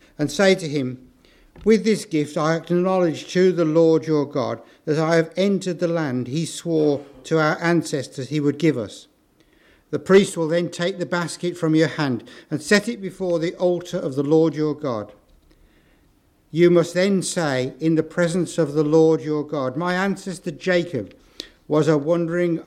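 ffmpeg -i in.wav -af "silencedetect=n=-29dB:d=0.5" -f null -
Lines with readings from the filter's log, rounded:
silence_start: 0.95
silence_end: 1.64 | silence_duration: 0.69
silence_start: 8.97
silence_end: 9.93 | silence_duration: 0.96
silence_start: 15.03
silence_end: 16.54 | silence_duration: 1.50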